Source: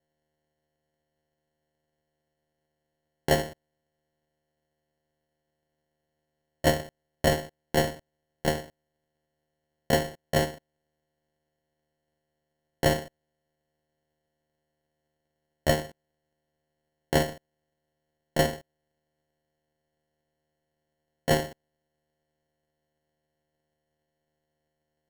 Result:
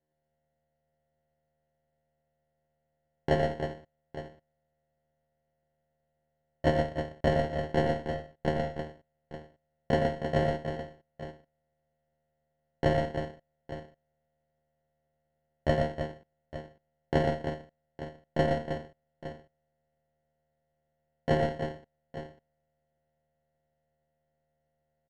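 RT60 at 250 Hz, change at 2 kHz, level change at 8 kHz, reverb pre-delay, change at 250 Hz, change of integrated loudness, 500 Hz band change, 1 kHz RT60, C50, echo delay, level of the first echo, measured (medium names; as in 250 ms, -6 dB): no reverb, -4.0 dB, under -15 dB, no reverb, 0.0 dB, -2.5 dB, -0.5 dB, no reverb, no reverb, 84 ms, -9.5 dB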